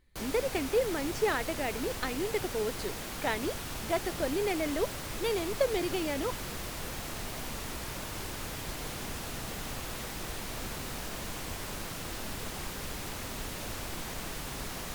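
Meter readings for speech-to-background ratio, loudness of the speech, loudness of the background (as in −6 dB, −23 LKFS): 5.0 dB, −33.0 LKFS, −38.0 LKFS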